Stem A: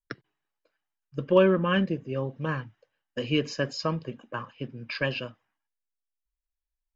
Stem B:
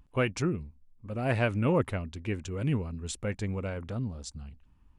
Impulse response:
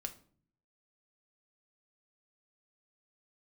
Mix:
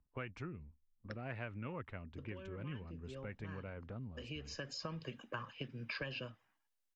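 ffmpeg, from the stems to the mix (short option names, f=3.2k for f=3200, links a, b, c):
-filter_complex "[0:a]acompressor=threshold=-28dB:ratio=6,adelay=1000,volume=1.5dB[a];[1:a]lowpass=2k,agate=range=-12dB:threshold=-48dB:ratio=16:detection=peak,volume=-7dB,asplit=2[b][c];[c]apad=whole_len=350821[d];[a][d]sidechaincompress=threshold=-54dB:ratio=5:attack=16:release=666[e];[e][b]amix=inputs=2:normalize=0,acrossover=split=110|1400[f][g][h];[f]acompressor=threshold=-53dB:ratio=4[i];[g]acompressor=threshold=-46dB:ratio=4[j];[h]acompressor=threshold=-45dB:ratio=4[k];[i][j][k]amix=inputs=3:normalize=0"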